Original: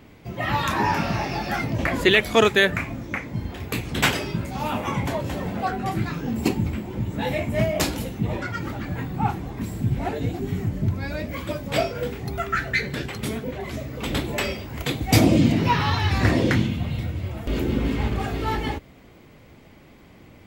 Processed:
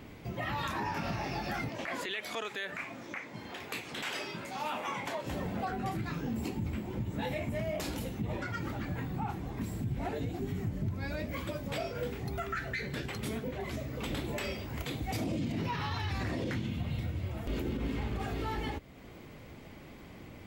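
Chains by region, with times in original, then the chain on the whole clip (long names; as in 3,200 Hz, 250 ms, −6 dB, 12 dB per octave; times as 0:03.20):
0:01.69–0:05.27: meter weighting curve A + downward compressor 4 to 1, threshold −21 dBFS
whole clip: downward compressor 1.5 to 1, threshold −45 dBFS; brickwall limiter −26 dBFS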